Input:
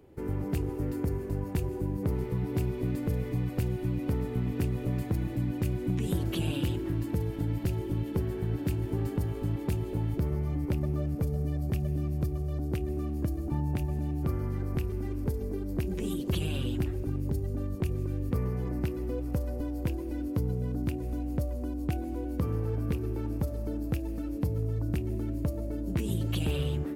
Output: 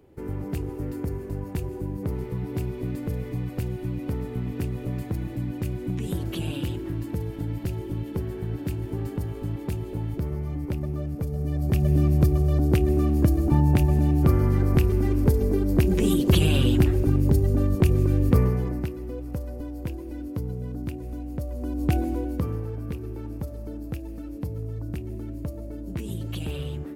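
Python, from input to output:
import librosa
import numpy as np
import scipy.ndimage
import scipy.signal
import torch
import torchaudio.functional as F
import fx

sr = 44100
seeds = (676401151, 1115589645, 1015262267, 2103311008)

y = fx.gain(x, sr, db=fx.line((11.28, 0.5), (11.97, 11.0), (18.38, 11.0), (18.96, -1.0), (21.4, -1.0), (21.98, 9.5), (22.73, -2.0)))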